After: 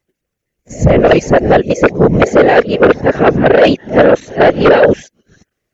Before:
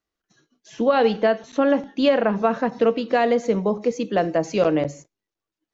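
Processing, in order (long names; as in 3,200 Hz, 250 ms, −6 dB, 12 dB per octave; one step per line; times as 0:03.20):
played backwards from end to start
octave-band graphic EQ 125/250/500/1,000/2,000/4,000 Hz +11/−6/+6/−11/+5/−7 dB
transient designer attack +6 dB, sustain +1 dB
random phases in short frames
in parallel at −2 dB: sine wavefolder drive 12 dB, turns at 2 dBFS
on the sum: level −4 dB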